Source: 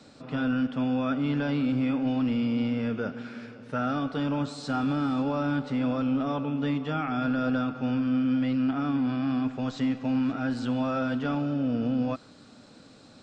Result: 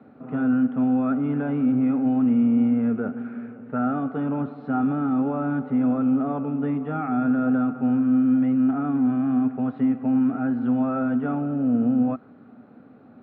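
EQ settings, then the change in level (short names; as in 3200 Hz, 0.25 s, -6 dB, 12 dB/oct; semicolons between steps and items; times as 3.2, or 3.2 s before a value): speaker cabinet 100–2200 Hz, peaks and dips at 240 Hz +8 dB, 410 Hz +7 dB, 740 Hz +9 dB, 1300 Hz +6 dB; low shelf 330 Hz +7.5 dB; -5.0 dB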